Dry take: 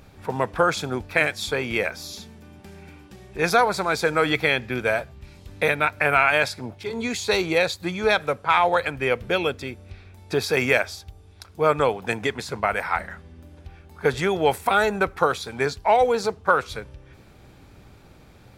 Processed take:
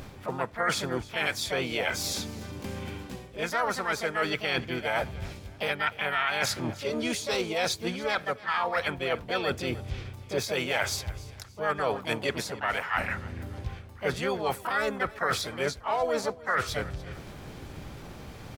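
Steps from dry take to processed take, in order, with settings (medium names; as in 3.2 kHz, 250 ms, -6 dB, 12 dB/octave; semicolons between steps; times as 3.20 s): dynamic bell 1.3 kHz, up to +6 dB, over -37 dBFS, Q 3.9; reverse; compression 5:1, threshold -34 dBFS, peak gain reduction 20.5 dB; reverse; feedback delay 292 ms, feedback 38%, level -19.5 dB; harmony voices +5 st -3 dB; trim +5 dB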